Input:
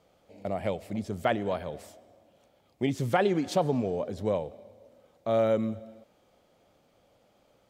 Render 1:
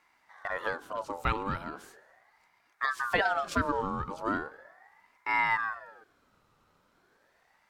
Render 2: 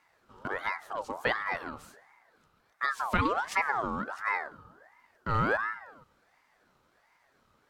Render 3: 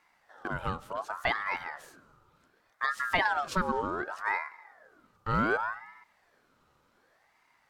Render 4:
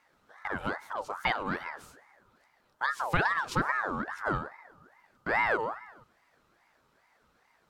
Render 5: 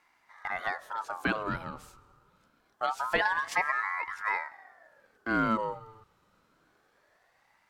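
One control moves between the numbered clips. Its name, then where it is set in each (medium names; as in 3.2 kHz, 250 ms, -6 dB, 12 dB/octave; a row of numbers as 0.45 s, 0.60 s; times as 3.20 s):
ring modulator with a swept carrier, at: 0.38 Hz, 1.4 Hz, 0.67 Hz, 2.4 Hz, 0.25 Hz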